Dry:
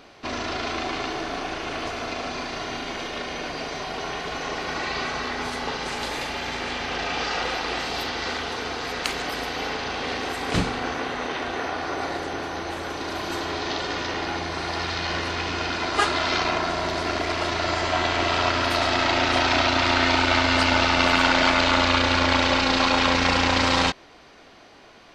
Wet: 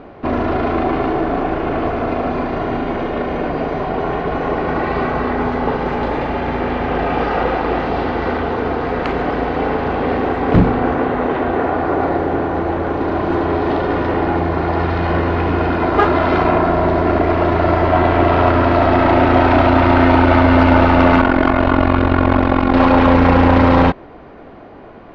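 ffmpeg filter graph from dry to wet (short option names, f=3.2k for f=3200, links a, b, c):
-filter_complex "[0:a]asettb=1/sr,asplit=3[a][b][c];[a]atrim=end=21.214[d];[b]atrim=start=21.21:end=22.74,asetpts=PTS-STARTPTS,afade=t=in:d=0.004:c=qsin,afade=t=out:st=1.526:d=0.004:c=qsin,highshelf=f=3.5k:g=-5,aecho=1:1:2.8:0.43,atrim=end_sample=67473,tremolo=f=45:d=0.857[e];[c]atrim=start=22.736[f];[d][e]acrossfade=d=0.004:c1=hsin:c2=qsin[g];[g][f]acrossfade=d=0.004:c1=qsin:c2=hsin,lowpass=2.4k,tiltshelf=f=1.4k:g=9,acontrast=79"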